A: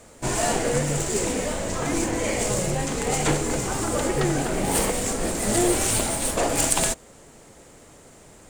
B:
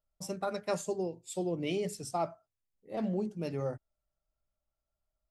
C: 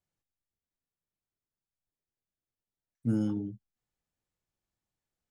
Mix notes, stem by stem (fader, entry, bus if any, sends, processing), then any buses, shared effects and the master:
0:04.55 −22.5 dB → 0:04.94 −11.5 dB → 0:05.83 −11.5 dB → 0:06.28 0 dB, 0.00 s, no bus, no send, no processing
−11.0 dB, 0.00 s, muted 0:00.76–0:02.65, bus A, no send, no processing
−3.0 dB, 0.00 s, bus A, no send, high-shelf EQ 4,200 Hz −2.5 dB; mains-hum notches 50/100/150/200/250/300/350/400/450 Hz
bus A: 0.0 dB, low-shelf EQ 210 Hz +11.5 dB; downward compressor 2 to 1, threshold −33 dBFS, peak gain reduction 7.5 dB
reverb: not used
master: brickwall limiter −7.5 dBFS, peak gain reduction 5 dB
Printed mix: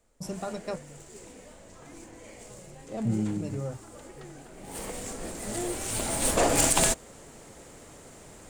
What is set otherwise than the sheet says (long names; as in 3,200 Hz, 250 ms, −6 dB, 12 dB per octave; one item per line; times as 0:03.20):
stem B −11.0 dB → +0.5 dB
stem C −3.0 dB → +5.0 dB